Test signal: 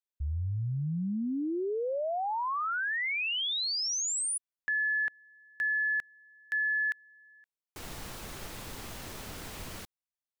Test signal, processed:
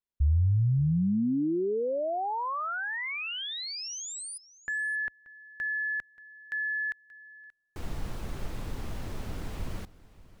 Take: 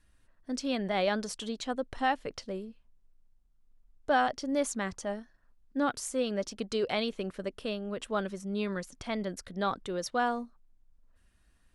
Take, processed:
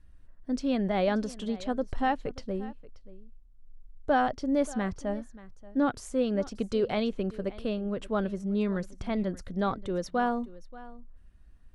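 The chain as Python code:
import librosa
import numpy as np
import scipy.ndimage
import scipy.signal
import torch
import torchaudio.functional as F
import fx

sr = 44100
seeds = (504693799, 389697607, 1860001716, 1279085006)

y = fx.tilt_eq(x, sr, slope=-2.5)
y = y + 10.0 ** (-19.0 / 20.0) * np.pad(y, (int(581 * sr / 1000.0), 0))[:len(y)]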